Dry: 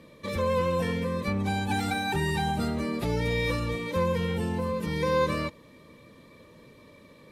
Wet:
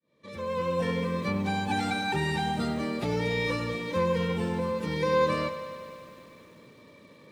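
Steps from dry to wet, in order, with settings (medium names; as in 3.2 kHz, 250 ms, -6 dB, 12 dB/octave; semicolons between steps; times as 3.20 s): fade-in on the opening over 0.96 s; band-pass 110–7700 Hz; bit-crushed delay 98 ms, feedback 80%, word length 9-bit, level -13 dB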